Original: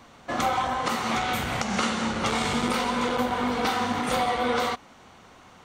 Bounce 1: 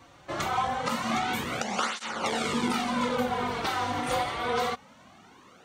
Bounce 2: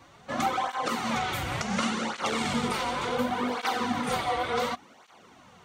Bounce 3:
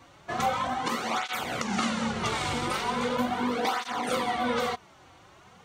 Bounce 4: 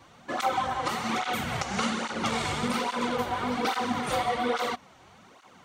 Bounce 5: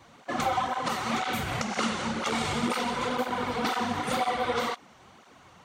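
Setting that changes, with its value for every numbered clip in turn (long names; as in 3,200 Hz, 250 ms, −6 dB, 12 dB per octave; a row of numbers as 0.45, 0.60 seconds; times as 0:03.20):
through-zero flanger with one copy inverted, nulls at: 0.25, 0.69, 0.39, 1.2, 2 Hertz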